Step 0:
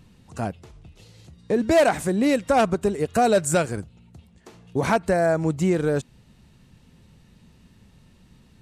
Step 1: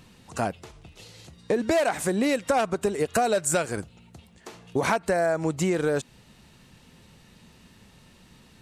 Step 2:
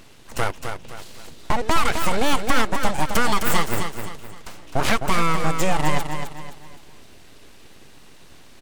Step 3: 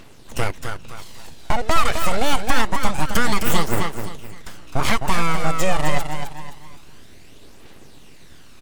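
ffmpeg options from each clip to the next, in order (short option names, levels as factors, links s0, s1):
-af "lowshelf=f=280:g=-10.5,acompressor=threshold=0.0398:ratio=4,volume=2.11"
-filter_complex "[0:a]aeval=exprs='abs(val(0))':c=same,asplit=2[s0][s1];[s1]aecho=0:1:259|518|777|1036:0.447|0.165|0.0612|0.0226[s2];[s0][s2]amix=inputs=2:normalize=0,volume=2.11"
-af "aphaser=in_gain=1:out_gain=1:delay=1.7:decay=0.37:speed=0.26:type=triangular"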